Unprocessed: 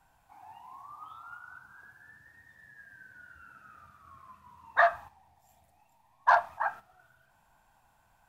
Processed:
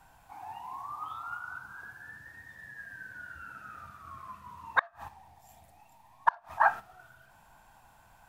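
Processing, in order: flipped gate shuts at -16 dBFS, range -35 dB; gain +7.5 dB

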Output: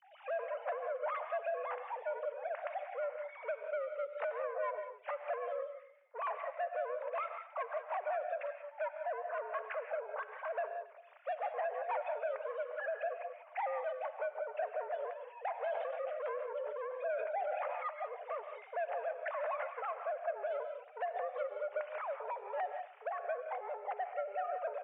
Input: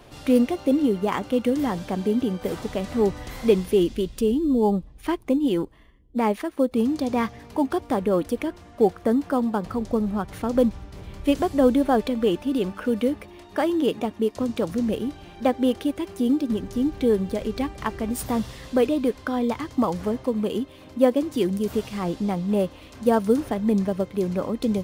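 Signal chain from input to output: sine-wave speech; compressor 5:1, threshold -26 dBFS, peak gain reduction 15.5 dB; flange 1.5 Hz, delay 2.1 ms, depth 1.4 ms, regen -76%; soft clip -35.5 dBFS, distortion -9 dB; echo 0.273 s -21.5 dB; non-linear reverb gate 0.21 s rising, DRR 6.5 dB; mistuned SSB +190 Hz 370–2400 Hz; 15.52–17.86 sustainer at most 25 dB/s; gain +3 dB

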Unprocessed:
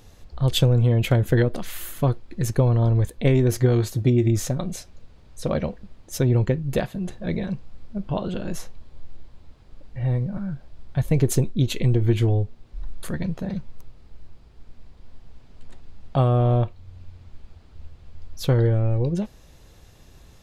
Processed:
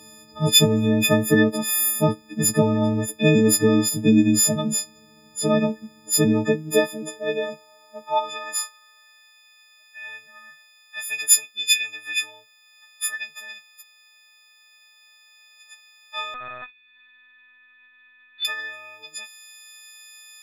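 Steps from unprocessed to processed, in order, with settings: frequency quantiser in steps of 6 st; high-pass sweep 210 Hz -> 2100 Hz, 6.24–9.39; 16.34–18.45 LPC vocoder at 8 kHz pitch kept

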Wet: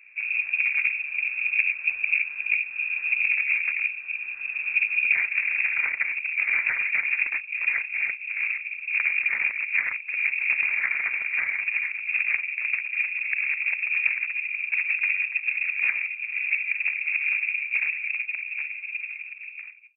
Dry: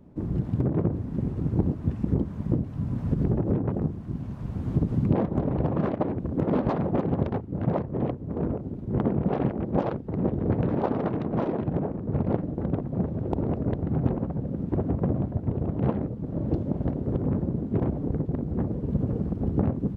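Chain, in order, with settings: ending faded out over 2.36 s; inverted band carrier 2600 Hz

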